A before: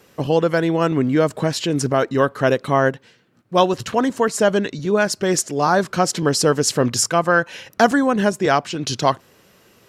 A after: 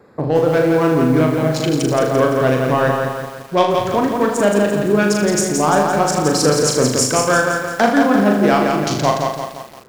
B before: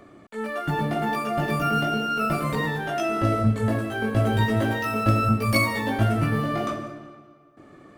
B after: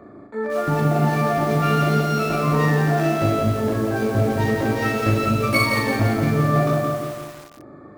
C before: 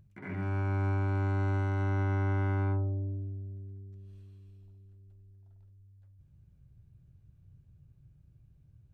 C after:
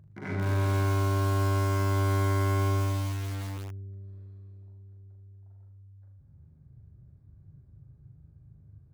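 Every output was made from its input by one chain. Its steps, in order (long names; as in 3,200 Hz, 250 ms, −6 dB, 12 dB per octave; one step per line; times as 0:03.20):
adaptive Wiener filter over 15 samples
high-pass filter 52 Hz 12 dB per octave
mains-hum notches 60/120/180 Hz
dynamic equaliser 2,300 Hz, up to +5 dB, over −51 dBFS, Q 7.7
in parallel at +1 dB: downward compressor 6 to 1, threshold −28 dBFS
on the sum: soft clipping −4 dBFS
on a send: flutter between parallel walls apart 6.7 metres, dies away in 0.51 s
on the sum: feedback echo at a low word length 171 ms, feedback 55%, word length 6 bits, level −4 dB
level −1 dB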